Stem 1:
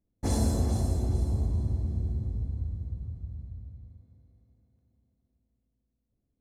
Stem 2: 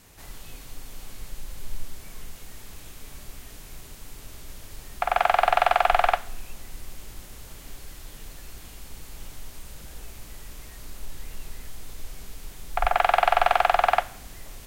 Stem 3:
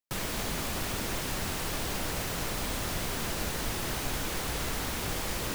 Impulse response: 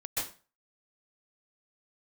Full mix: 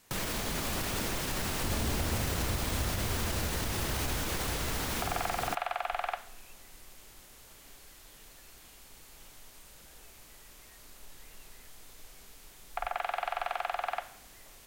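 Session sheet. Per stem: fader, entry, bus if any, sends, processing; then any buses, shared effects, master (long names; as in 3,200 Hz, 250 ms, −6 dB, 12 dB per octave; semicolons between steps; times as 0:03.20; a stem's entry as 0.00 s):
−8.0 dB, 1.40 s, no send, no processing
−7.0 dB, 0.00 s, no send, low-shelf EQ 230 Hz −11 dB
+2.5 dB, 0.00 s, no send, brickwall limiter −26.5 dBFS, peak gain reduction 6.5 dB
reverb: not used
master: brickwall limiter −21 dBFS, peak gain reduction 7.5 dB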